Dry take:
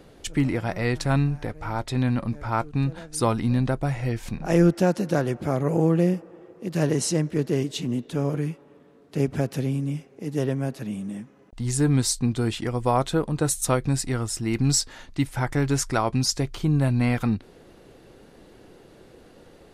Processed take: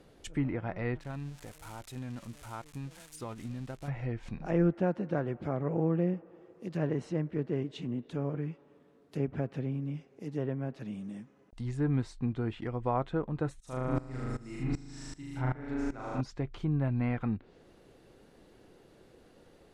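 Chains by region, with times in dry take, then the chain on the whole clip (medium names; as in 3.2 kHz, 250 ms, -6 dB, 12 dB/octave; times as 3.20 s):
0.99–3.88 s: zero-crossing glitches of -17.5 dBFS + gate -24 dBFS, range -8 dB + compression 4:1, threshold -28 dBFS
13.60–16.21 s: flutter echo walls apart 6.7 m, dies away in 1.4 s + sawtooth tremolo in dB swelling 2.6 Hz, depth 19 dB
whole clip: low-pass that closes with the level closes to 2.4 kHz, closed at -22 dBFS; dynamic bell 4.9 kHz, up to -6 dB, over -52 dBFS, Q 1.2; trim -8.5 dB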